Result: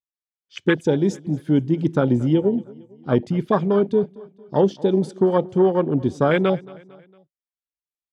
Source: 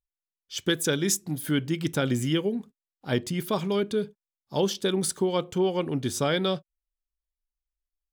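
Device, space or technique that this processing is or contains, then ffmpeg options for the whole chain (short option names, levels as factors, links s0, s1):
over-cleaned archive recording: -filter_complex "[0:a]asettb=1/sr,asplit=3[s0][s1][s2];[s0]atrim=end=3.124[s3];[s1]atrim=start=3.12:end=3.63,asetpts=PTS-STARTPTS,afade=t=in:d=0.004:c=qsin,afade=t=out:st=0.506:d=0.004:c=qsin,equalizer=f=2100:w=0.98:g=4.5[s4];[s2]atrim=start=3.626[s5];[s3][s4]acrossfade=d=0.004:c1=hsin:c2=qsin[s6];[s6][s5]acrossfade=d=0.004:c1=qsin:c2=hsin,highpass=100,lowpass=5100,afwtdn=0.0316,aecho=1:1:227|454|681:0.0794|0.0389|0.0191,volume=2.51"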